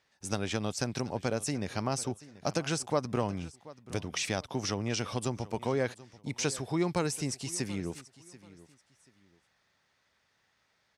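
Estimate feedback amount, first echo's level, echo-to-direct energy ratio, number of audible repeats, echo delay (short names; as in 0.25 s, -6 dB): 27%, -19.0 dB, -18.5 dB, 2, 0.734 s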